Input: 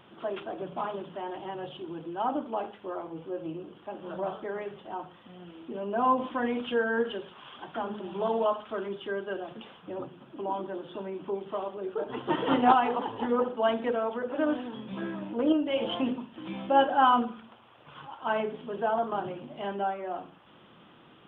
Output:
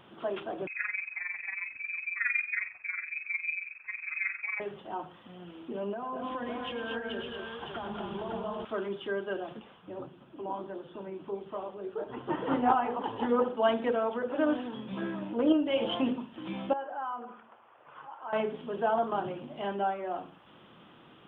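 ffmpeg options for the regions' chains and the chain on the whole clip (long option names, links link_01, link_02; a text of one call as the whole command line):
ffmpeg -i in.wav -filter_complex "[0:a]asettb=1/sr,asplit=3[link_01][link_02][link_03];[link_01]atrim=end=0.674[link_04];[link_02]atrim=start=0.67:end=4.6,asetpts=PTS-STARTPTS,afade=type=in:duration=0.004:curve=qsin,afade=type=out:start_time=3.926:duration=0.004:curve=qsin,tremolo=f=22:d=0.75,aemphasis=mode=reproduction:type=riaa,lowpass=frequency=2300:width_type=q:width=0.5098,lowpass=frequency=2300:width_type=q:width=0.6013,lowpass=frequency=2300:width_type=q:width=0.9,lowpass=frequency=2300:width_type=q:width=2.563,afreqshift=-2700[link_05];[link_03]atrim=start=4.596[link_06];[link_04][link_05]acrossfade=duration=0.004:curve1=hsin:curve2=qsin[link_07];[link_07][link_06]acrossfade=duration=0.004:curve1=qsin:curve2=hsin,asettb=1/sr,asplit=3[link_08][link_09][link_10];[link_08]atrim=end=5.924[link_11];[link_09]atrim=start=5.92:end=8.65,asetpts=PTS-STARTPTS,afade=type=in:duration=0.004:curve=qsin,afade=type=out:start_time=2.726:duration=0.004:curve=qsin,asubboost=boost=9.5:cutoff=110,acompressor=threshold=-34dB:ratio=12:attack=3.2:release=140:knee=1:detection=peak,aecho=1:1:105|206|233|560:0.299|0.398|0.596|0.562,atrim=end_sample=120393[link_12];[link_10]atrim=start=8.646[link_13];[link_11][link_12]acrossfade=duration=0.004:curve1=hsin:curve2=qsin[link_14];[link_14][link_13]acrossfade=duration=0.004:curve1=qsin:curve2=hsin,asettb=1/sr,asplit=3[link_15][link_16][link_17];[link_15]atrim=end=9.594[link_18];[link_16]atrim=start=9.59:end=13.04,asetpts=PTS-STARTPTS,afade=type=in:duration=0.004:curve=qsin,afade=type=out:start_time=3.446:duration=0.004:curve=qsin,acrossover=split=2600[link_19][link_20];[link_20]acompressor=threshold=-60dB:ratio=4:attack=1:release=60[link_21];[link_19][link_21]amix=inputs=2:normalize=0,equalizer=frequency=70:width_type=o:width=1.4:gain=5.5,flanger=delay=1.4:depth=9.4:regen=-70:speed=1.6:shape=triangular[link_22];[link_17]atrim=start=13.036[link_23];[link_18][link_22]acrossfade=duration=0.004:curve1=hsin:curve2=qsin[link_24];[link_24][link_23]acrossfade=duration=0.004:curve1=qsin:curve2=hsin,asettb=1/sr,asplit=3[link_25][link_26][link_27];[link_25]atrim=end=16.734[link_28];[link_26]atrim=start=16.73:end=18.33,asetpts=PTS-STARTPTS,afade=type=in:duration=0.004:curve=qsin,afade=type=out:start_time=1.596:duration=0.004:curve=qsin,lowpass=3200,acrossover=split=400 2400:gain=0.178 1 0.141[link_29][link_30][link_31];[link_29][link_30][link_31]amix=inputs=3:normalize=0,acompressor=threshold=-40dB:ratio=2.5:attack=3.2:release=140:knee=1:detection=peak[link_32];[link_27]atrim=start=18.326[link_33];[link_28][link_32]acrossfade=duration=0.004:curve1=hsin:curve2=qsin[link_34];[link_34][link_33]acrossfade=duration=0.004:curve1=qsin:curve2=hsin" out.wav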